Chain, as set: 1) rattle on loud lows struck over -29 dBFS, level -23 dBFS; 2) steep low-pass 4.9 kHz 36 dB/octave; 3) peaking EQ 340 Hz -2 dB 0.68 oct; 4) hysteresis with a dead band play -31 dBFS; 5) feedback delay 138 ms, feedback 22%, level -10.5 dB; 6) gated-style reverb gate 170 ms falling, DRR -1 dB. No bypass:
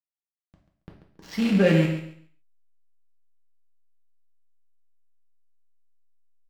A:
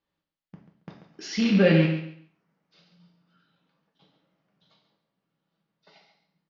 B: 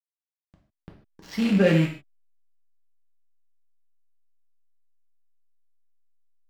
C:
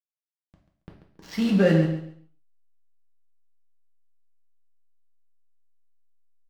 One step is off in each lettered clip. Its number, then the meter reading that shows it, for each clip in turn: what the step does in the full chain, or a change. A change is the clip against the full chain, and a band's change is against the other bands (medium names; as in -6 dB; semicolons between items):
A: 4, distortion -14 dB; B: 5, momentary loudness spread change -4 LU; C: 1, 2 kHz band -2.5 dB